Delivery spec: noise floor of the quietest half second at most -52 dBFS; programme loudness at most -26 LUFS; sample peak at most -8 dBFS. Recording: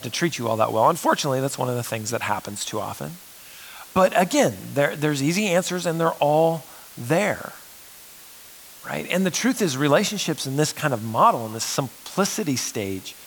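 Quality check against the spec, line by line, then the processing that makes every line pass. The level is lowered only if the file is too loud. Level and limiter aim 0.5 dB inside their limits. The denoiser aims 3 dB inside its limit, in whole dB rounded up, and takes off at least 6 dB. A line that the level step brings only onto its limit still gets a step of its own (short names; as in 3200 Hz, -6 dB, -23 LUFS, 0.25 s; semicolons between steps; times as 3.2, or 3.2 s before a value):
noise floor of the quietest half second -45 dBFS: fail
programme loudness -22.5 LUFS: fail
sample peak -5.0 dBFS: fail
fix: denoiser 6 dB, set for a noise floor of -45 dBFS; gain -4 dB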